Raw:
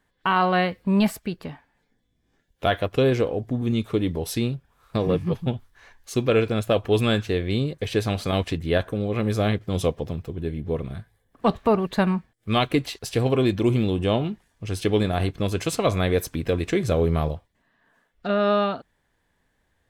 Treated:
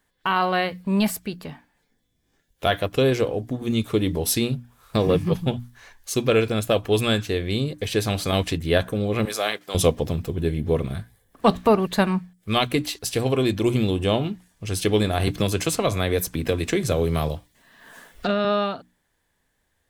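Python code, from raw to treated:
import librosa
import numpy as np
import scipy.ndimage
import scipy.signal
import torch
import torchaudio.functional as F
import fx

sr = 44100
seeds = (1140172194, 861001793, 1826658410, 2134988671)

y = fx.highpass(x, sr, hz=650.0, slope=12, at=(9.25, 9.75))
y = fx.band_squash(y, sr, depth_pct=70, at=(15.27, 18.45))
y = fx.high_shelf(y, sr, hz=4800.0, db=10.0)
y = fx.hum_notches(y, sr, base_hz=60, count=5)
y = fx.rider(y, sr, range_db=10, speed_s=2.0)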